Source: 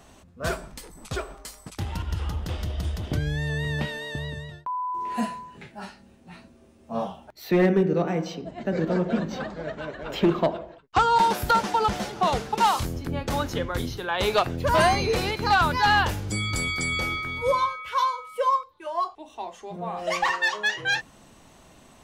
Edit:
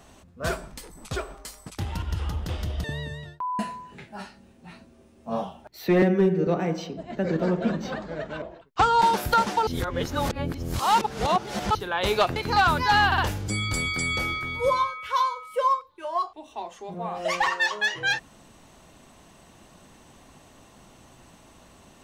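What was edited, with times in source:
0:02.84–0:04.10: remove
0:04.85–0:05.22: remove
0:07.65–0:07.95: time-stretch 1.5×
0:09.90–0:10.59: remove
0:11.84–0:13.92: reverse
0:14.53–0:15.30: remove
0:16.00: stutter 0.06 s, 3 plays

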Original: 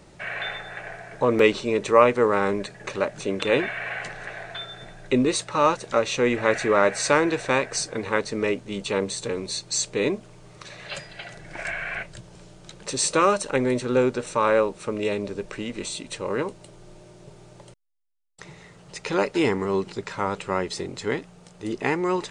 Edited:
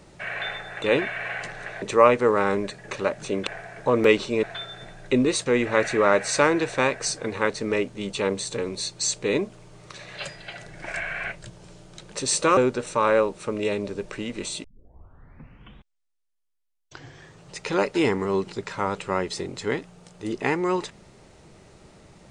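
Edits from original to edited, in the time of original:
0:00.82–0:01.78: swap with 0:03.43–0:04.43
0:05.46–0:06.17: remove
0:13.28–0:13.97: remove
0:16.04: tape start 2.92 s

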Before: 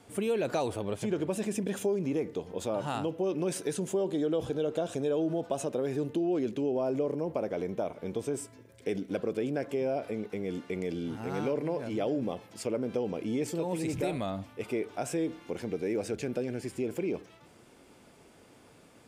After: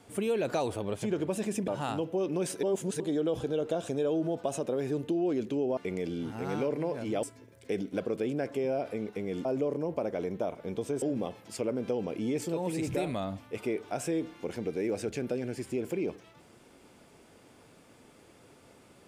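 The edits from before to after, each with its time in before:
0:01.68–0:02.74: remove
0:03.69–0:04.06: reverse
0:06.83–0:08.40: swap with 0:10.62–0:12.08

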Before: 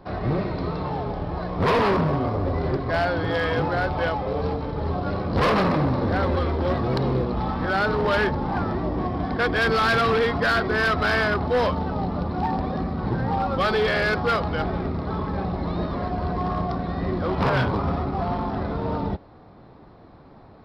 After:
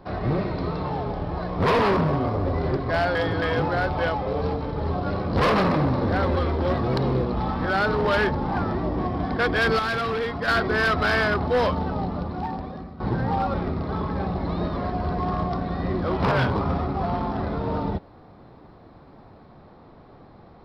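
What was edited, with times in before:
0:03.15–0:03.42: reverse
0:09.79–0:10.48: clip gain −5.5 dB
0:11.87–0:13.00: fade out, to −15 dB
0:13.54–0:14.72: remove

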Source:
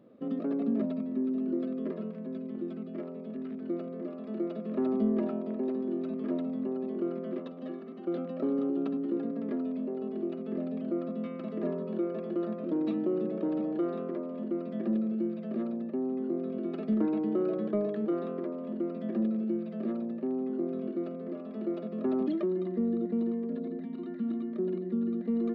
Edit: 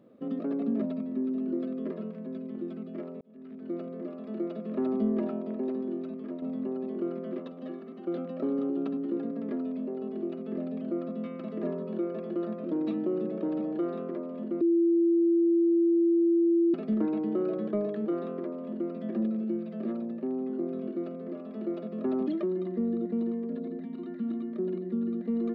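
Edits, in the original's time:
0:03.21–0:03.81: fade in linear
0:05.80–0:06.42: fade out, to −8 dB
0:14.61–0:16.74: beep over 338 Hz −20 dBFS

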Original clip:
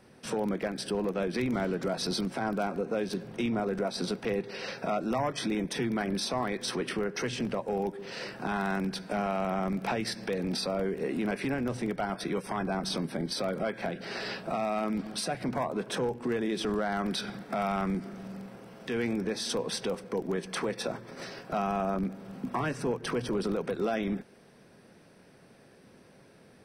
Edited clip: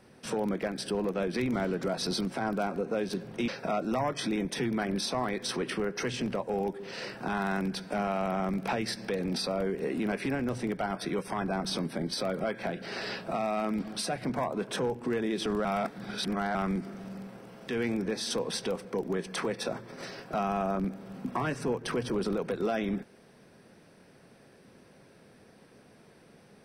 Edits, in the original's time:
0:03.48–0:04.67: remove
0:16.84–0:17.74: reverse

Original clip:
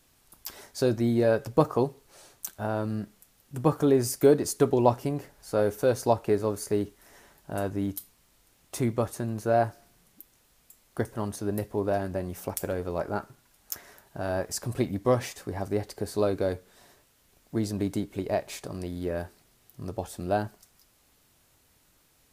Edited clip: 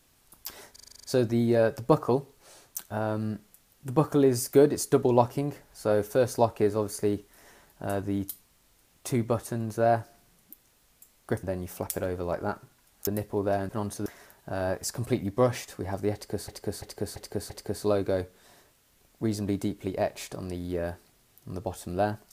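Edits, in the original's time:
0:00.72: stutter 0.04 s, 9 plays
0:11.11–0:11.48: swap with 0:12.10–0:13.74
0:15.82–0:16.16: repeat, 5 plays

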